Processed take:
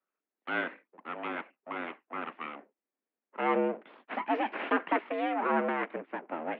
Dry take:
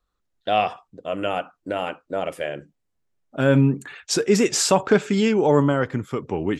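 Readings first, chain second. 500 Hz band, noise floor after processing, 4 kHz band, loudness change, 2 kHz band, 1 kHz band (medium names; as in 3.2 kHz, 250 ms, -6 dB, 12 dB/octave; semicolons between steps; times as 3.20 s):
-13.0 dB, under -85 dBFS, -18.5 dB, -11.5 dB, -5.0 dB, -5.5 dB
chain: full-wave rectifier; mistuned SSB +75 Hz 160–2600 Hz; trim -6 dB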